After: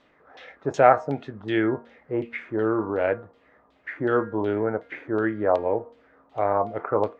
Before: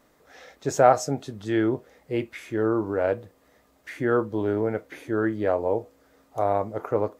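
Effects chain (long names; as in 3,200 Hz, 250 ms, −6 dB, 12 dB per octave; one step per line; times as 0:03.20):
low-shelf EQ 74 Hz −7 dB
hum removal 233.8 Hz, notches 9
auto-filter low-pass saw down 2.7 Hz 890–3,700 Hz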